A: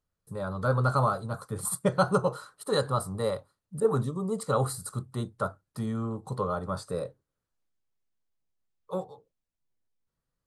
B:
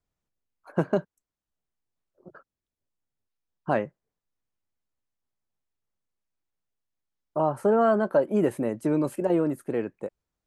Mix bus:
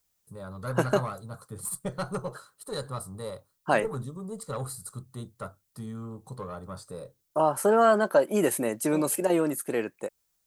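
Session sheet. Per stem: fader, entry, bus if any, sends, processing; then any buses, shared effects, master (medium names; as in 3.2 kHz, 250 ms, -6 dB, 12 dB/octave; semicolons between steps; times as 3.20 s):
-9.0 dB, 0.00 s, no send, single-diode clipper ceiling -19 dBFS; bass shelf 450 Hz +4 dB
+2.5 dB, 0.00 s, no send, tilt EQ +2.5 dB/octave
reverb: none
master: treble shelf 4.5 kHz +9 dB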